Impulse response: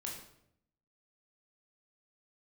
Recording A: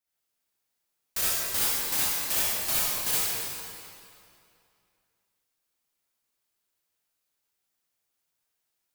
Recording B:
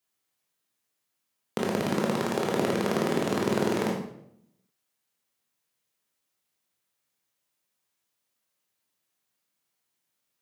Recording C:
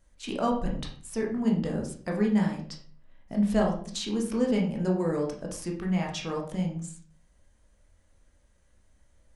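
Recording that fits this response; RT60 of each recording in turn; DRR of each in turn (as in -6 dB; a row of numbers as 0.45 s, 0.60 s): B; 2.6 s, 0.75 s, 0.50 s; -10.0 dB, -2.0 dB, -0.5 dB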